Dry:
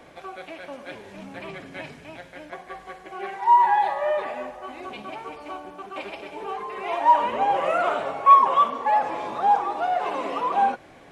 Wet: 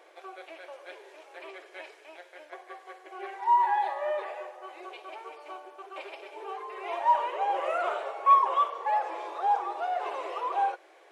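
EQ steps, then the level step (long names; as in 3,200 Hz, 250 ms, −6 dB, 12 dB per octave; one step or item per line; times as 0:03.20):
linear-phase brick-wall high-pass 320 Hz
−6.5 dB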